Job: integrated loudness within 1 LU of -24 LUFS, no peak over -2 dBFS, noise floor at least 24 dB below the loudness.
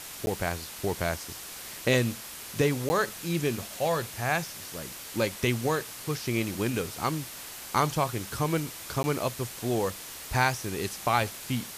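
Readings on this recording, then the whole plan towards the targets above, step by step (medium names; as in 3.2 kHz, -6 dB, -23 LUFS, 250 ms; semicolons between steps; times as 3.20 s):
dropouts 3; longest dropout 10 ms; noise floor -42 dBFS; noise floor target -54 dBFS; loudness -30.0 LUFS; peak level -10.0 dBFS; loudness target -24.0 LUFS
-> interpolate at 0.26/2.89/9.03 s, 10 ms; noise print and reduce 12 dB; trim +6 dB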